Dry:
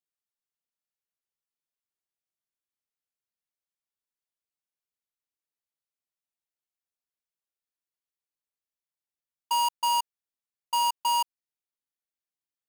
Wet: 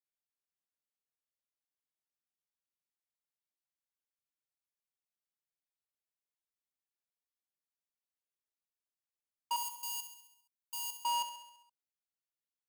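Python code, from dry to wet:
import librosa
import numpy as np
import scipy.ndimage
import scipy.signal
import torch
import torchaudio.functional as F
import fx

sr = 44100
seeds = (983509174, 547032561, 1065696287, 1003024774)

p1 = fx.differentiator(x, sr, at=(9.56, 11.01))
p2 = p1 + fx.echo_feedback(p1, sr, ms=67, feedback_pct=59, wet_db=-10.0, dry=0)
y = p2 * 10.0 ** (-8.0 / 20.0)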